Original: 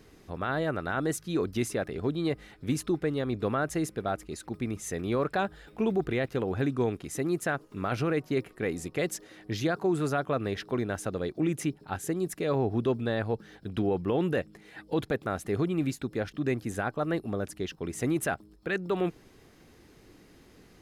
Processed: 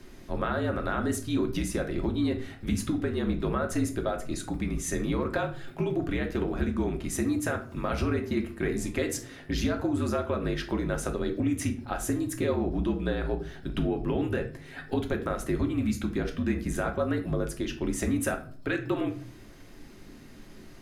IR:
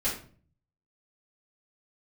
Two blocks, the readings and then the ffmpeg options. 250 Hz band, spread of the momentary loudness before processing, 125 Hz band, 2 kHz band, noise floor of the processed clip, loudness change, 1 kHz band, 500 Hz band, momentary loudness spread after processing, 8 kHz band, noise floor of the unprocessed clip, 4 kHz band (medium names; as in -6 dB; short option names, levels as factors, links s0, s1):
+2.0 dB, 7 LU, +1.0 dB, -0.5 dB, -48 dBFS, +1.0 dB, -1.0 dB, -1.0 dB, 5 LU, +3.0 dB, -57 dBFS, +1.5 dB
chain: -filter_complex "[0:a]afreqshift=-53,acompressor=threshold=0.0316:ratio=6,asplit=2[s0][s1];[1:a]atrim=start_sample=2205[s2];[s1][s2]afir=irnorm=-1:irlink=0,volume=0.355[s3];[s0][s3]amix=inputs=2:normalize=0,volume=1.26"